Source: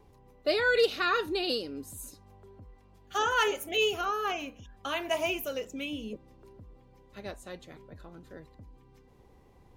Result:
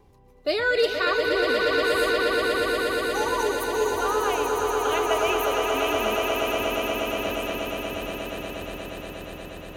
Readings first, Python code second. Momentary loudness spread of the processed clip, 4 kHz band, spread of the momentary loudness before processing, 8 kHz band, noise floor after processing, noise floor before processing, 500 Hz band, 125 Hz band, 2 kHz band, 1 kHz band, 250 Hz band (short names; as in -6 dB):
12 LU, +5.5 dB, 19 LU, +9.0 dB, -41 dBFS, -59 dBFS, +9.0 dB, +8.5 dB, +7.5 dB, +8.0 dB, +8.5 dB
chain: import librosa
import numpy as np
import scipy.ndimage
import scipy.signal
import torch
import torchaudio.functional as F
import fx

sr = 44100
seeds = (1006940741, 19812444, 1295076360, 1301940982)

y = fx.spec_box(x, sr, start_s=1.13, length_s=2.88, low_hz=1100.0, high_hz=5700.0, gain_db=-26)
y = fx.echo_swell(y, sr, ms=119, loudest=8, wet_db=-6)
y = y * 10.0 ** (2.5 / 20.0)